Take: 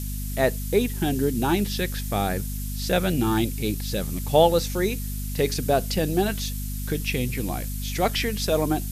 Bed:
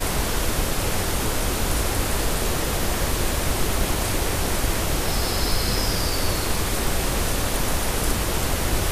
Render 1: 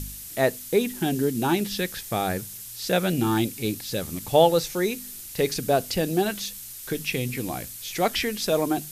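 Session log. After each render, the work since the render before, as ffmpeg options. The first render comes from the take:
-af "bandreject=f=50:t=h:w=4,bandreject=f=100:t=h:w=4,bandreject=f=150:t=h:w=4,bandreject=f=200:t=h:w=4,bandreject=f=250:t=h:w=4"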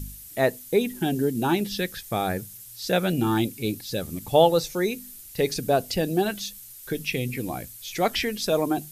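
-af "afftdn=nr=8:nf=-40"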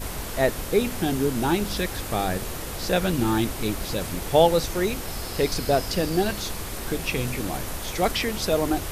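-filter_complex "[1:a]volume=-9.5dB[a];[0:a][a]amix=inputs=2:normalize=0"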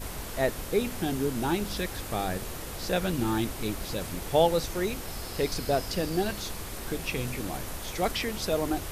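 -af "volume=-5dB"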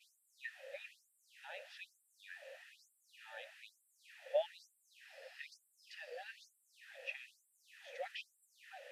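-filter_complex "[0:a]asplit=3[a][b][c];[a]bandpass=f=530:t=q:w=8,volume=0dB[d];[b]bandpass=f=1.84k:t=q:w=8,volume=-6dB[e];[c]bandpass=f=2.48k:t=q:w=8,volume=-9dB[f];[d][e][f]amix=inputs=3:normalize=0,afftfilt=real='re*gte(b*sr/1024,470*pow(7600/470,0.5+0.5*sin(2*PI*1.1*pts/sr)))':imag='im*gte(b*sr/1024,470*pow(7600/470,0.5+0.5*sin(2*PI*1.1*pts/sr)))':win_size=1024:overlap=0.75"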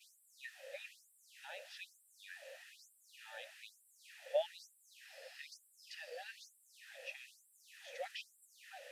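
-filter_complex "[0:a]acrossover=split=1200|4100[a][b][c];[b]alimiter=level_in=18.5dB:limit=-24dB:level=0:latency=1:release=227,volume=-18.5dB[d];[c]acontrast=89[e];[a][d][e]amix=inputs=3:normalize=0"

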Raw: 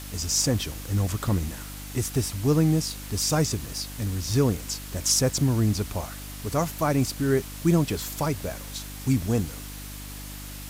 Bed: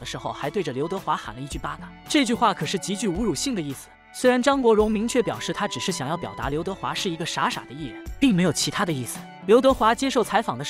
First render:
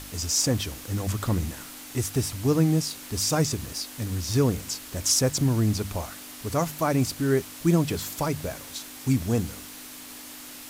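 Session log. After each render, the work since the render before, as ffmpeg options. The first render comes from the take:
-af "bandreject=f=50:t=h:w=4,bandreject=f=100:t=h:w=4,bandreject=f=150:t=h:w=4,bandreject=f=200:t=h:w=4"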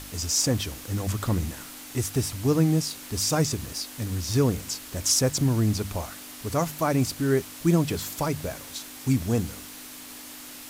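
-af anull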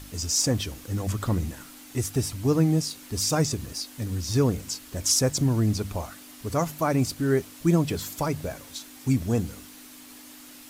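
-af "afftdn=nr=6:nf=-42"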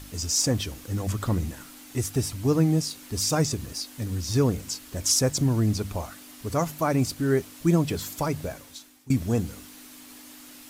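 -filter_complex "[0:a]asplit=2[a][b];[a]atrim=end=9.1,asetpts=PTS-STARTPTS,afade=t=out:st=8.44:d=0.66:silence=0.1[c];[b]atrim=start=9.1,asetpts=PTS-STARTPTS,afade=t=in:d=0.004:c=hsin:silence=0.1[d];[c][d]concat=n=2:v=0:a=1"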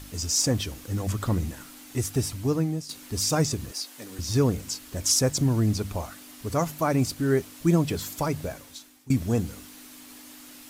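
-filter_complex "[0:a]asettb=1/sr,asplit=3[a][b][c];[a]atrim=end=3.714[d];[b]atrim=start=3.71:end=4.19,asetpts=PTS-STARTPTS,afade=t=in:d=0.004:c=qsin,afade=t=out:st=0.476:d=0.004:c=qsin,highpass=380[e];[c]atrim=start=4.186[f];[d][e]acrossfade=d=0.004:c1=hsin:c2=qsin[g];[g][f]acrossfade=d=0.004:c1=qsin:c2=hsin,asplit=2[h][i];[h]atrim=end=2.89,asetpts=PTS-STARTPTS,afade=t=out:st=2.31:d=0.58:silence=0.251189[j];[i]atrim=start=2.89,asetpts=PTS-STARTPTS,afade=t=in:d=0.004:c=hsin:silence=0.251189[k];[j][k]concat=n=2:v=0:a=1"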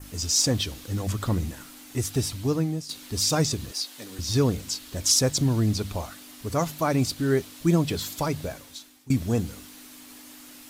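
-af "adynamicequalizer=threshold=0.00501:dfrequency=3800:dqfactor=1.7:tfrequency=3800:tqfactor=1.7:attack=5:release=100:ratio=0.375:range=3.5:mode=boostabove:tftype=bell"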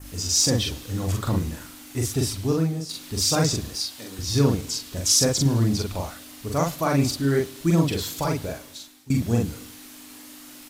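-filter_complex "[0:a]asplit=2[a][b];[b]adelay=43,volume=-2dB[c];[a][c]amix=inputs=2:normalize=0,aecho=1:1:106|212|318:0.075|0.0382|0.0195"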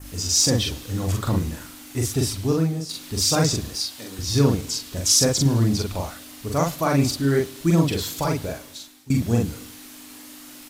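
-af "volume=1.5dB"

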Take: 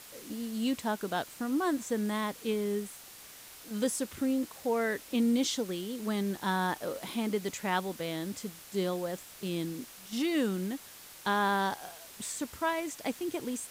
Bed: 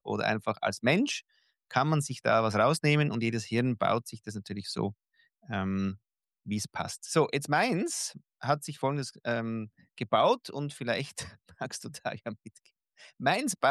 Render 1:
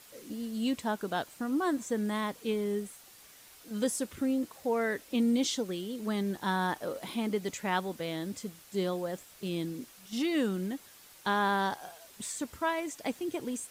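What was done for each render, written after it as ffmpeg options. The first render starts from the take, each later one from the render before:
-af "afftdn=nr=6:nf=-51"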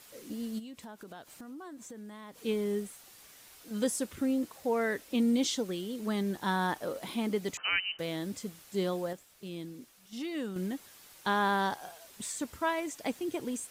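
-filter_complex "[0:a]asplit=3[a][b][c];[a]afade=t=out:st=0.58:d=0.02[d];[b]acompressor=threshold=-44dB:ratio=6:attack=3.2:release=140:knee=1:detection=peak,afade=t=in:st=0.58:d=0.02,afade=t=out:st=2.42:d=0.02[e];[c]afade=t=in:st=2.42:d=0.02[f];[d][e][f]amix=inputs=3:normalize=0,asettb=1/sr,asplit=3[g][h][i];[g]atrim=end=7.574[j];[h]atrim=start=7.57:end=7.99,asetpts=PTS-STARTPTS,afade=t=in:d=0.004:c=qsin,afade=t=out:st=0.416:d=0.004:c=qsin,lowpass=f=2.7k:t=q:w=0.5098,lowpass=f=2.7k:t=q:w=0.6013,lowpass=f=2.7k:t=q:w=0.9,lowpass=f=2.7k:t=q:w=2.563,afreqshift=-3200[k];[i]atrim=start=7.986[l];[j][k]acrossfade=d=0.004:c1=hsin:c2=qsin[m];[m][l]acrossfade=d=0.004:c1=qsin:c2=hsin,asplit=3[n][o][p];[n]atrim=end=9.132[q];[o]atrim=start=9.128:end=10.562,asetpts=PTS-STARTPTS,volume=-7dB[r];[p]atrim=start=10.558[s];[q][r]acrossfade=d=0.004:c1=hsin:c2=hsin[t];[t][s]acrossfade=d=0.004:c1=hsin:c2=hsin"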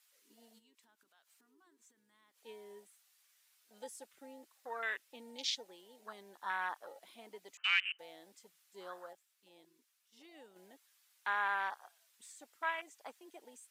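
-af "afwtdn=0.0158,highpass=1.3k"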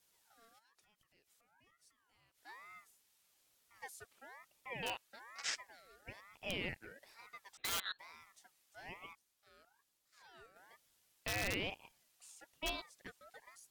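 -filter_complex "[0:a]acrossover=split=1000|4200[a][b][c];[b]aeval=exprs='(mod(28.2*val(0)+1,2)-1)/28.2':c=same[d];[a][d][c]amix=inputs=3:normalize=0,aeval=exprs='val(0)*sin(2*PI*1300*n/s+1300*0.3/1.1*sin(2*PI*1.1*n/s))':c=same"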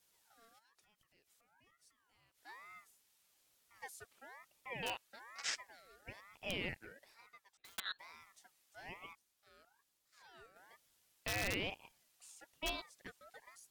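-filter_complex "[0:a]asplit=2[a][b];[a]atrim=end=7.78,asetpts=PTS-STARTPTS,afade=t=out:st=6.79:d=0.99[c];[b]atrim=start=7.78,asetpts=PTS-STARTPTS,afade=t=in:d=0.004:c=hsin[d];[c][d]concat=n=2:v=0:a=1"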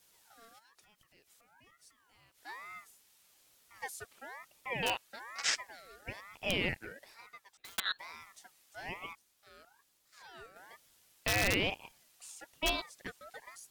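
-af "volume=8dB"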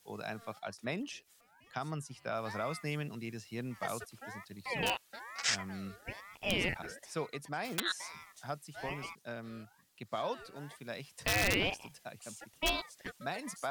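-filter_complex "[1:a]volume=-12.5dB[a];[0:a][a]amix=inputs=2:normalize=0"

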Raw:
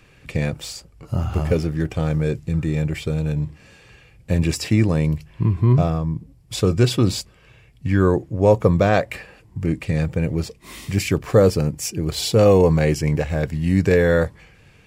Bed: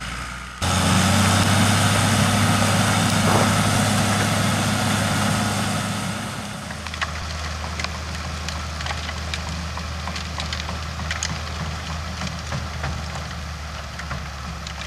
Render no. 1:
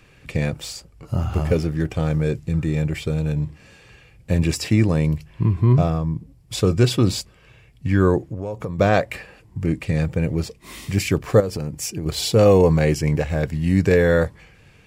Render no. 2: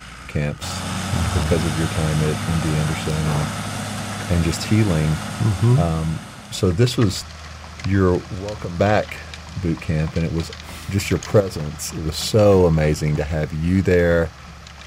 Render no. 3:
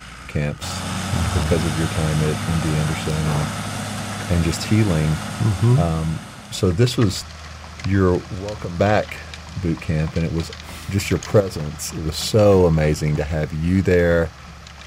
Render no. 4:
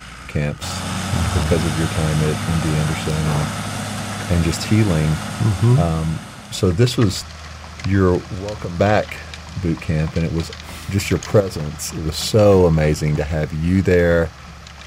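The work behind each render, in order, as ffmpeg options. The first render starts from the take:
-filter_complex "[0:a]asplit=3[a][b][c];[a]afade=t=out:st=8.25:d=0.02[d];[b]acompressor=threshold=-24dB:ratio=8:attack=3.2:release=140:knee=1:detection=peak,afade=t=in:st=8.25:d=0.02,afade=t=out:st=8.78:d=0.02[e];[c]afade=t=in:st=8.78:d=0.02[f];[d][e][f]amix=inputs=3:normalize=0,asettb=1/sr,asplit=3[g][h][i];[g]atrim=end=11.404[j];[h]atrim=start=11.4:end=12.06,asetpts=PTS-STARTPTS,afade=t=in:d=0.004:c=qsin,afade=t=out:st=0.656:d=0.004:c=qsin,acompressor=threshold=-22dB:ratio=6:attack=3.2:release=140:knee=1:detection=peak[k];[i]atrim=start=12.056[l];[j][k]acrossfade=d=0.004:c1=hsin:c2=qsin[m];[m][l]acrossfade=d=0.004:c1=qsin:c2=hsin"
-filter_complex "[1:a]volume=-8dB[a];[0:a][a]amix=inputs=2:normalize=0"
-af anull
-af "volume=1.5dB,alimiter=limit=-2dB:level=0:latency=1"

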